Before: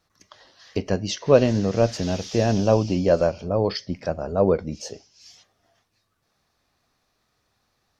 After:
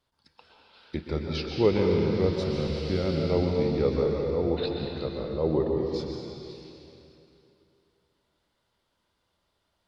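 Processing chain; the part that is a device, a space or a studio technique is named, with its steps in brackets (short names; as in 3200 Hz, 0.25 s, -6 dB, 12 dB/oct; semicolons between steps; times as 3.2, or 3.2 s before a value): slowed and reverbed (varispeed -19%; reverb RT60 2.8 s, pre-delay 0.118 s, DRR 0.5 dB); gain -7.5 dB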